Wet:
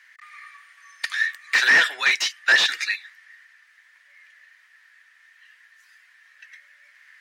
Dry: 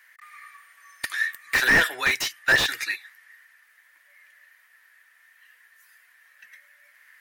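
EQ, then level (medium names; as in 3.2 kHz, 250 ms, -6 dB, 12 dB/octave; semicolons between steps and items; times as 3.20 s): high-pass 130 Hz; distance through air 140 m; tilt EQ +4.5 dB/octave; 0.0 dB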